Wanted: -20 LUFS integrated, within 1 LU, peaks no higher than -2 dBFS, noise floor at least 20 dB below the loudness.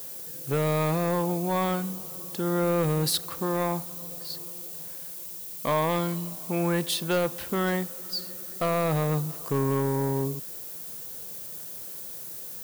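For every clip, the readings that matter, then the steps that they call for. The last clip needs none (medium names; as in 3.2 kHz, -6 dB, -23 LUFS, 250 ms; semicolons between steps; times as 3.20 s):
clipped samples 1.1%; clipping level -19.0 dBFS; noise floor -39 dBFS; noise floor target -49 dBFS; loudness -28.5 LUFS; peak level -19.0 dBFS; loudness target -20.0 LUFS
-> clip repair -19 dBFS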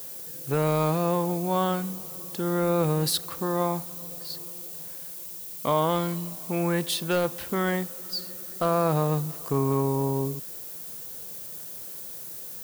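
clipped samples 0.0%; noise floor -39 dBFS; noise floor target -48 dBFS
-> noise reduction 9 dB, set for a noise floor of -39 dBFS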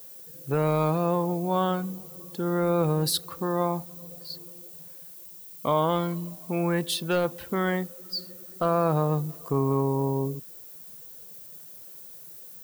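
noise floor -45 dBFS; noise floor target -47 dBFS
-> noise reduction 6 dB, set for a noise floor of -45 dBFS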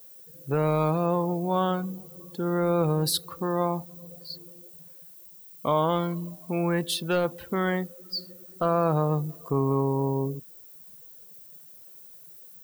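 noise floor -49 dBFS; loudness -27.0 LUFS; peak level -11.5 dBFS; loudness target -20.0 LUFS
-> trim +7 dB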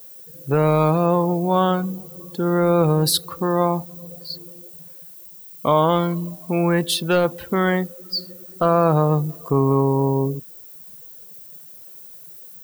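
loudness -20.0 LUFS; peak level -4.5 dBFS; noise floor -42 dBFS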